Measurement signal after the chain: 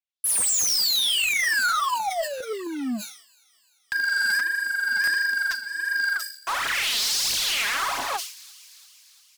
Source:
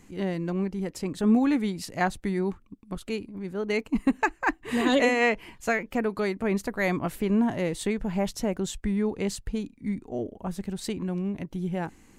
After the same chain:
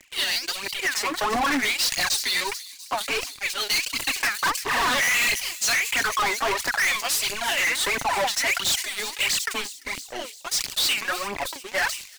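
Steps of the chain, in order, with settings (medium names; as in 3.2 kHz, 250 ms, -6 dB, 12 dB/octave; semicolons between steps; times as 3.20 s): comb 7.2 ms, depth 54%; LFO band-pass sine 0.59 Hz 940–5100 Hz; steep high-pass 240 Hz 72 dB/octave; tilt EQ +3 dB/octave; in parallel at -1.5 dB: compression 6:1, threshold -40 dBFS; on the sum: waveshaping leveller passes 5; phaser 1.5 Hz, delay 5 ms, feedback 70%; saturation -22 dBFS; dynamic bell 440 Hz, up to -5 dB, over -47 dBFS, Q 3.6; on a send: feedback echo behind a high-pass 344 ms, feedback 59%, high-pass 5.2 kHz, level -11.5 dB; on the sum: buffer glitch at 0.32/2.37/5.04 s, samples 512, times 2; decay stretcher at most 100 dB/s; trim +2 dB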